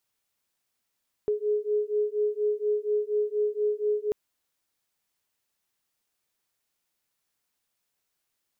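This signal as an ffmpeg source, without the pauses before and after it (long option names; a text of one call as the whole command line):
ffmpeg -f lavfi -i "aevalsrc='0.0447*(sin(2*PI*418*t)+sin(2*PI*422.2*t))':duration=2.84:sample_rate=44100" out.wav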